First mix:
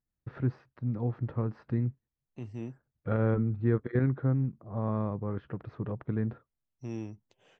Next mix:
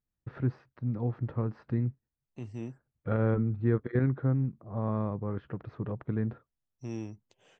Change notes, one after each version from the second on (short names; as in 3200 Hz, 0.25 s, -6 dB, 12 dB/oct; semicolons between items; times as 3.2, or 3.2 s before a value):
second voice: remove air absorption 64 m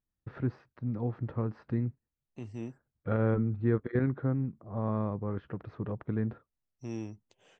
master: add bell 130 Hz -4 dB 0.3 oct